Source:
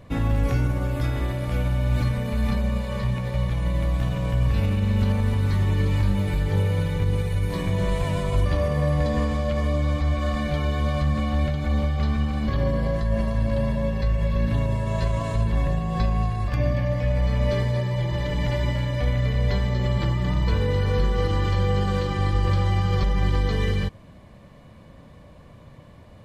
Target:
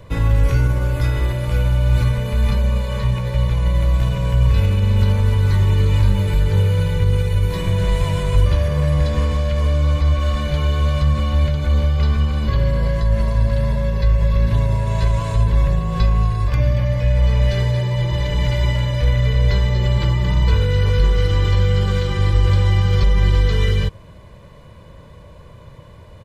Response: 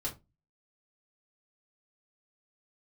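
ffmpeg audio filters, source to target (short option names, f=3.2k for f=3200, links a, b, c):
-filter_complex "[0:a]equalizer=f=560:w=5.6:g=-2.5,aecho=1:1:2:0.55,acrossover=split=280|1600[a][b][c];[b]asoftclip=type=tanh:threshold=-31dB[d];[a][d][c]amix=inputs=3:normalize=0,volume=4.5dB"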